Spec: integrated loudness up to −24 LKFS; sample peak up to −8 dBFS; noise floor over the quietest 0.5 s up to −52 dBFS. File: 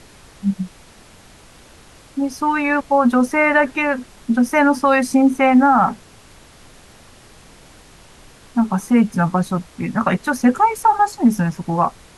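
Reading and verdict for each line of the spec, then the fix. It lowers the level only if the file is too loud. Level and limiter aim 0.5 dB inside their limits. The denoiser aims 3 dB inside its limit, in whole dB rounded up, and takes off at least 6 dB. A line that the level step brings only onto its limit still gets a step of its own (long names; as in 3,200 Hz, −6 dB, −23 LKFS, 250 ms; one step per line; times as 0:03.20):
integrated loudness −17.5 LKFS: out of spec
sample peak −4.5 dBFS: out of spec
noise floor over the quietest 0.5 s −45 dBFS: out of spec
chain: broadband denoise 6 dB, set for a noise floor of −45 dBFS
level −7 dB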